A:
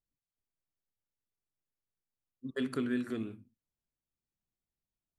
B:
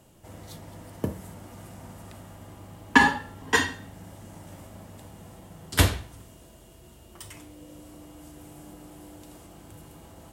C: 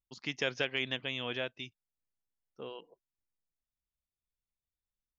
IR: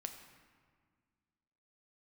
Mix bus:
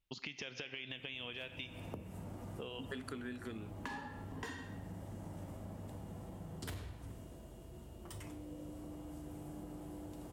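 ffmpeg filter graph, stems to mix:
-filter_complex "[0:a]equalizer=frequency=200:width_type=o:width=2.8:gain=-7,adelay=350,volume=3dB[link_01];[1:a]asoftclip=type=tanh:threshold=-20dB,adelay=900,volume=-6.5dB,asplit=2[link_02][link_03];[link_03]volume=-12.5dB[link_04];[2:a]equalizer=frequency=2800:width=1.2:gain=11,alimiter=limit=-21.5dB:level=0:latency=1:release=83,volume=0.5dB,asplit=2[link_05][link_06];[link_06]volume=-5dB[link_07];[link_02][link_05]amix=inputs=2:normalize=0,tiltshelf=frequency=1200:gain=6,acompressor=threshold=-41dB:ratio=6,volume=0dB[link_08];[3:a]atrim=start_sample=2205[link_09];[link_04][link_07]amix=inputs=2:normalize=0[link_10];[link_10][link_09]afir=irnorm=-1:irlink=0[link_11];[link_01][link_08][link_11]amix=inputs=3:normalize=0,acompressor=threshold=-41dB:ratio=6"

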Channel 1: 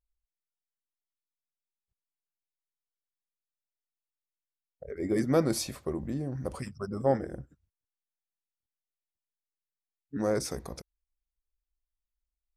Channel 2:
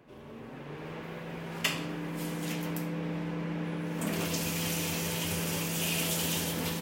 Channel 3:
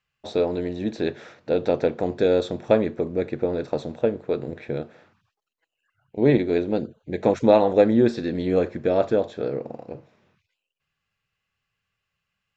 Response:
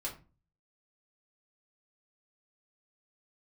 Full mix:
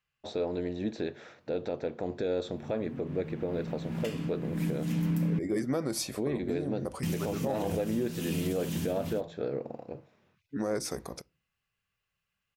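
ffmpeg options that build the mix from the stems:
-filter_complex "[0:a]highpass=frequency=140:poles=1,acontrast=47,adelay=400,volume=-5dB,asplit=2[link_01][link_02];[link_02]volume=-21dB[link_03];[1:a]lowshelf=frequency=320:width_type=q:width=1.5:gain=13,adelay=2400,volume=-2dB,asplit=3[link_04][link_05][link_06];[link_04]atrim=end=5.39,asetpts=PTS-STARTPTS,afade=type=out:start_time=5.386:duration=0.004:curve=hsin[link_07];[link_05]atrim=start=5.39:end=7.03,asetpts=PTS-STARTPTS,volume=0[link_08];[link_06]atrim=start=7.03,asetpts=PTS-STARTPTS,afade=type=in:duration=0.004:curve=hsin[link_09];[link_07][link_08][link_09]concat=n=3:v=0:a=1,asplit=2[link_10][link_11];[link_11]volume=-21dB[link_12];[2:a]alimiter=limit=-12.5dB:level=0:latency=1:release=376,volume=-5dB,asplit=2[link_13][link_14];[link_14]apad=whole_len=406282[link_15];[link_10][link_15]sidechaincompress=threshold=-35dB:ratio=8:attack=25:release=600[link_16];[3:a]atrim=start_sample=2205[link_17];[link_03][link_12]amix=inputs=2:normalize=0[link_18];[link_18][link_17]afir=irnorm=-1:irlink=0[link_19];[link_01][link_16][link_13][link_19]amix=inputs=4:normalize=0,alimiter=limit=-21.5dB:level=0:latency=1:release=114"

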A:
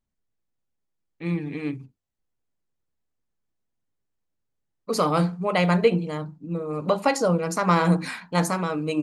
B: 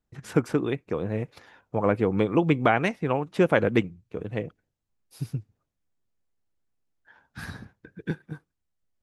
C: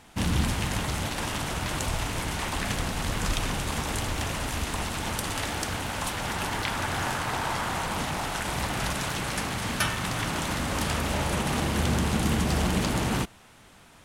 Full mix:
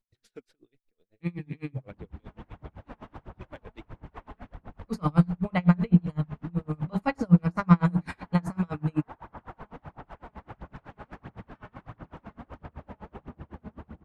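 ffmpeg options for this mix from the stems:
ffmpeg -i stem1.wav -i stem2.wav -i stem3.wav -filter_complex "[0:a]asubboost=boost=11.5:cutoff=130,volume=-1dB[link_01];[1:a]equalizer=frequency=160:width_type=o:width=0.67:gain=-12,equalizer=frequency=1000:width_type=o:width=0.67:gain=-12,equalizer=frequency=4000:width_type=o:width=0.67:gain=11,aeval=exprs='val(0)*pow(10,-20*(0.5-0.5*cos(2*PI*0.51*n/s))/20)':channel_layout=same,volume=-14dB[link_02];[2:a]lowpass=1200,acompressor=threshold=-35dB:ratio=6,adelay=1750,volume=0dB[link_03];[link_02][link_03]amix=inputs=2:normalize=0,aphaser=in_gain=1:out_gain=1:delay=4.8:decay=0.44:speed=1.5:type=sinusoidal,alimiter=level_in=6dB:limit=-24dB:level=0:latency=1:release=63,volume=-6dB,volume=0dB[link_04];[link_01][link_04]amix=inputs=2:normalize=0,acrossover=split=2500[link_05][link_06];[link_06]acompressor=threshold=-46dB:ratio=4:attack=1:release=60[link_07];[link_05][link_07]amix=inputs=2:normalize=0,aeval=exprs='val(0)*pow(10,-33*(0.5-0.5*cos(2*PI*7.9*n/s))/20)':channel_layout=same" out.wav

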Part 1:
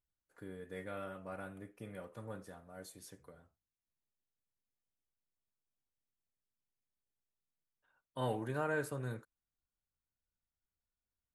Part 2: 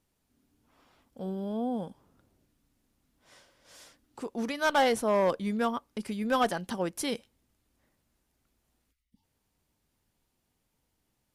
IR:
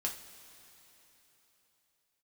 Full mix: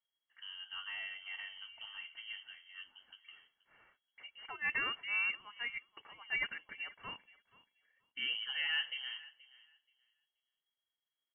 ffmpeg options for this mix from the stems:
-filter_complex "[0:a]equalizer=frequency=130:width_type=o:width=1.3:gain=-10.5,volume=2dB,asplit=3[link_01][link_02][link_03];[link_02]volume=-20dB[link_04];[1:a]agate=range=-33dB:threshold=-56dB:ratio=3:detection=peak,highpass=frequency=570:width=0.5412,highpass=frequency=570:width=1.3066,volume=-6dB,asplit=2[link_05][link_06];[link_06]volume=-20.5dB[link_07];[link_03]apad=whole_len=500354[link_08];[link_05][link_08]sidechaincompress=threshold=-52dB:ratio=8:attack=16:release=481[link_09];[link_04][link_07]amix=inputs=2:normalize=0,aecho=0:1:478|956|1434:1|0.18|0.0324[link_10];[link_01][link_09][link_10]amix=inputs=3:normalize=0,asuperstop=centerf=770:order=20:qfactor=2.3,lowpass=frequency=2800:width_type=q:width=0.5098,lowpass=frequency=2800:width_type=q:width=0.6013,lowpass=frequency=2800:width_type=q:width=0.9,lowpass=frequency=2800:width_type=q:width=2.563,afreqshift=-3300"

